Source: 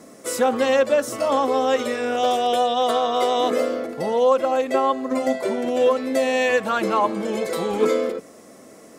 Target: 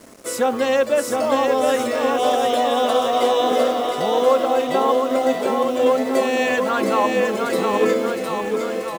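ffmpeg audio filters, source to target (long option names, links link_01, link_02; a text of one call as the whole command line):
ffmpeg -i in.wav -af "acrusher=bits=6:mix=0:aa=0.5,aecho=1:1:710|1349|1924|2442|2908:0.631|0.398|0.251|0.158|0.1" out.wav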